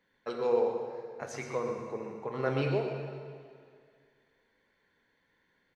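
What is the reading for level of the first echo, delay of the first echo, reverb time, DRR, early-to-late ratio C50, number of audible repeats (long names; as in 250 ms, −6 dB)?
−8.5 dB, 123 ms, 2.1 s, 2.0 dB, 3.0 dB, 1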